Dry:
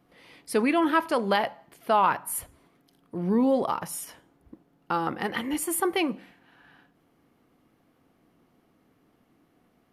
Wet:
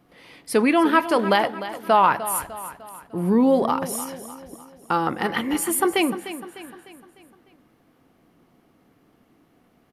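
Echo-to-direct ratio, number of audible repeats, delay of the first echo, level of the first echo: −12.0 dB, 4, 301 ms, −13.0 dB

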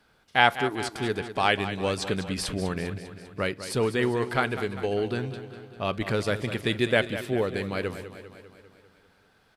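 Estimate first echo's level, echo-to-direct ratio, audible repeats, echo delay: −12.0 dB, −10.0 dB, 6, 199 ms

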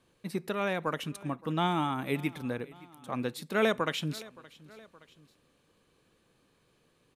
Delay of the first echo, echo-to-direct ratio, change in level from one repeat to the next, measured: 570 ms, −20.0 dB, −4.5 dB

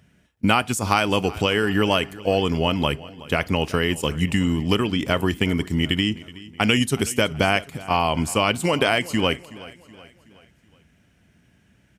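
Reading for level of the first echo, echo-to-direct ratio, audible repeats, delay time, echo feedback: −19.0 dB, −18.0 dB, 3, 373 ms, 46%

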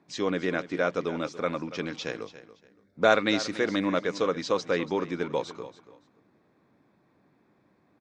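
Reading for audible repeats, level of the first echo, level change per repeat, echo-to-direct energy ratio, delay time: 2, −15.0 dB, −13.0 dB, −15.0 dB, 284 ms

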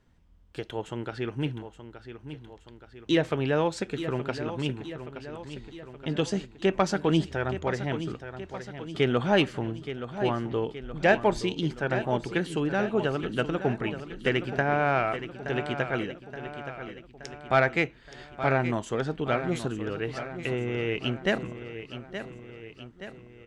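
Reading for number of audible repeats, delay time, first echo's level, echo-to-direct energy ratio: 4, 873 ms, −11.0 dB, −9.5 dB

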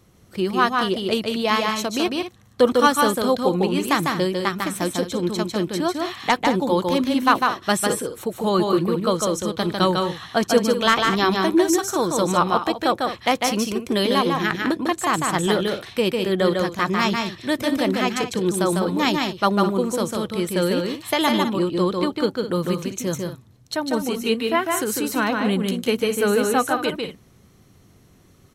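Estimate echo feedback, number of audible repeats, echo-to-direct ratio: repeats not evenly spaced, 2, −3.0 dB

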